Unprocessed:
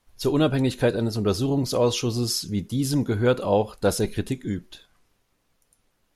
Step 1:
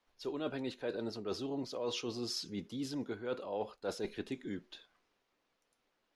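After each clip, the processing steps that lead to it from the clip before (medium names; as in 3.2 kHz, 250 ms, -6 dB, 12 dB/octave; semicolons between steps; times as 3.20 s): three-band isolator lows -16 dB, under 240 Hz, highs -18 dB, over 5.8 kHz; reverse; compression 6:1, threshold -29 dBFS, peak gain reduction 13 dB; reverse; trim -6 dB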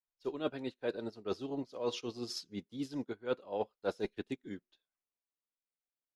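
upward expansion 2.5:1, over -55 dBFS; trim +5.5 dB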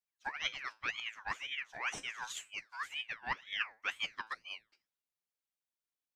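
feedback comb 110 Hz, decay 0.3 s, harmonics all, mix 60%; ring modulator with a swept carrier 2 kHz, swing 40%, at 2 Hz; trim +6.5 dB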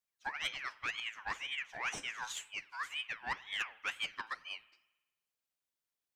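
saturation -29 dBFS, distortion -15 dB; on a send at -19 dB: reverberation RT60 1.1 s, pre-delay 45 ms; on the sum: trim +1.5 dB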